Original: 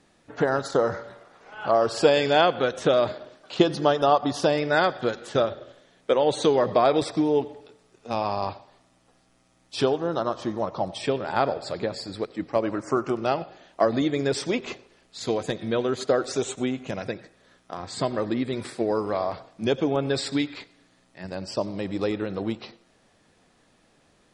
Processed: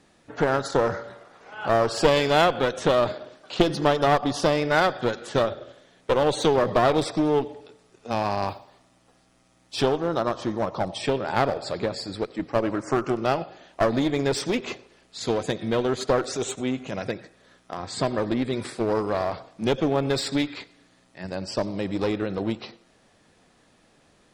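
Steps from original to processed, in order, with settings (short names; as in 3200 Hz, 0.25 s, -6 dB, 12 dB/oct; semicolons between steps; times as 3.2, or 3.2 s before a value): 8.48–9.77 short-mantissa float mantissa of 4-bit; 16.21–16.98 transient shaper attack -7 dB, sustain 0 dB; one-sided clip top -25.5 dBFS; gain +2 dB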